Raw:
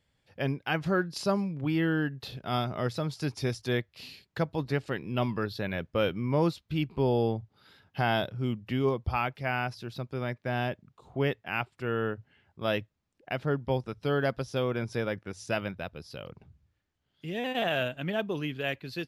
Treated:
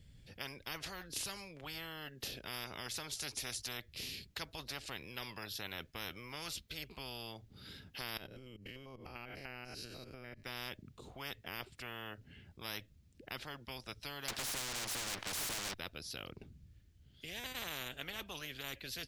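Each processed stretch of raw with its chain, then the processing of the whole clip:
0:08.17–0:10.44: spectrum averaged block by block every 100 ms + downward compressor 16 to 1, threshold −41 dBFS + Butterworth band-reject 3,500 Hz, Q 6.5
0:14.28–0:15.74: lower of the sound and its delayed copy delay 1.3 ms + mid-hump overdrive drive 38 dB, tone 1,200 Hz, clips at −16.5 dBFS + multiband upward and downward compressor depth 70%
whole clip: guitar amp tone stack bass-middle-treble 10-0-1; every bin compressed towards the loudest bin 10 to 1; level +8.5 dB

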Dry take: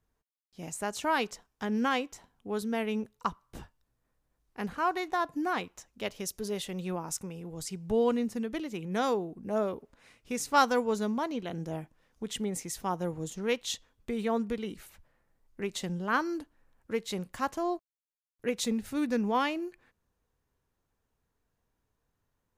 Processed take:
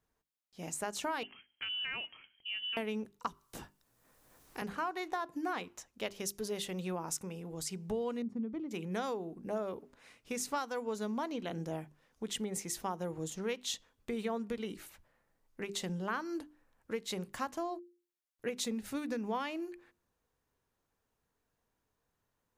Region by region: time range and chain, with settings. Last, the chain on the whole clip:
0:01.23–0:02.77: voice inversion scrambler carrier 3,200 Hz + downward compressor 4 to 1, threshold −36 dBFS
0:03.27–0:04.62: high-shelf EQ 4,500 Hz +10.5 dB + multiband upward and downward compressor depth 70%
0:08.22–0:08.71: resonant band-pass 190 Hz, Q 0.67 + comb filter 0.9 ms, depth 38%
whole clip: low-shelf EQ 120 Hz −7.5 dB; downward compressor 12 to 1, threshold −32 dBFS; mains-hum notches 50/100/150/200/250/300/350/400 Hz

